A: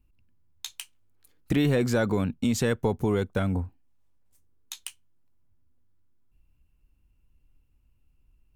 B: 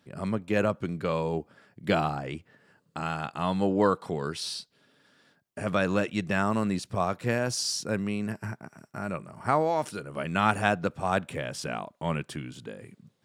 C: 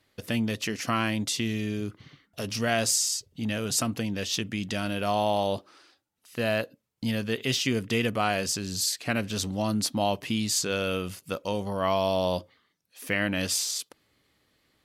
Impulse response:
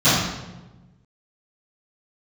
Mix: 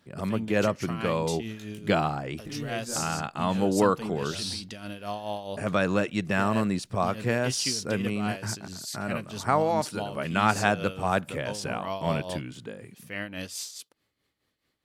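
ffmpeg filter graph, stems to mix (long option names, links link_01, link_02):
-filter_complex "[0:a]flanger=delay=19.5:depth=3.2:speed=1.9,adelay=950,volume=-11.5dB[link_01];[1:a]volume=1dB,asplit=2[link_02][link_03];[2:a]tremolo=f=4.7:d=0.63,volume=-6dB[link_04];[link_03]apad=whole_len=419030[link_05];[link_01][link_05]sidechaincompress=threshold=-31dB:ratio=8:attack=16:release=115[link_06];[link_06][link_02][link_04]amix=inputs=3:normalize=0"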